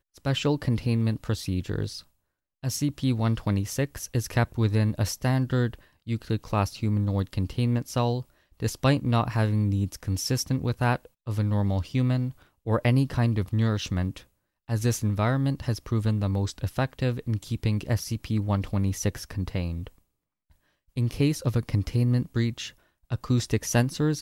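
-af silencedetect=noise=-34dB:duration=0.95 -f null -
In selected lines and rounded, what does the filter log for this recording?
silence_start: 19.87
silence_end: 20.97 | silence_duration: 1.10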